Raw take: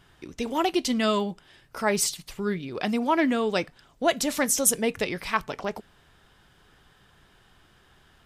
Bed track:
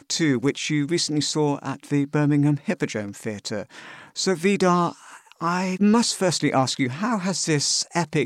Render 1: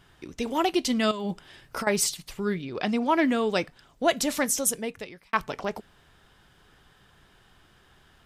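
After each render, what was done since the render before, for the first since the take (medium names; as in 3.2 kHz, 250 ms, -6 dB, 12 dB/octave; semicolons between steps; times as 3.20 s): 1.11–1.87 s: compressor with a negative ratio -31 dBFS; 2.62–3.09 s: low-pass 6.9 kHz; 4.30–5.33 s: fade out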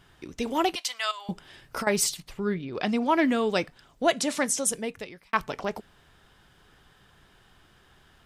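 0.75–1.29 s: high-pass 850 Hz 24 dB/octave; 2.20–2.73 s: treble shelf 3.6 kHz -9.5 dB; 4.11–4.72 s: Chebyshev band-pass 130–9800 Hz, order 3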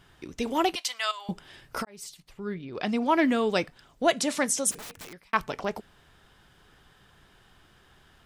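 1.85–3.12 s: fade in; 4.71–5.23 s: integer overflow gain 36.5 dB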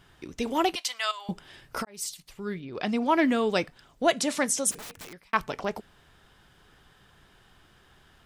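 1.94–2.60 s: peaking EQ 12 kHz +9 dB 2.8 oct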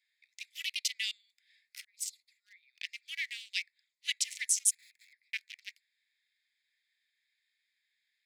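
local Wiener filter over 15 samples; steep high-pass 2 kHz 72 dB/octave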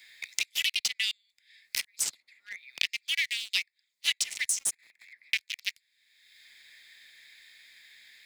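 waveshaping leveller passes 2; three bands compressed up and down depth 100%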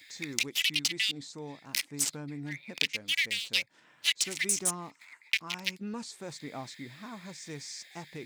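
add bed track -20.5 dB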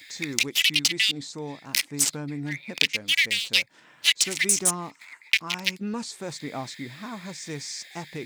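trim +7 dB; peak limiter -2 dBFS, peak gain reduction 1.5 dB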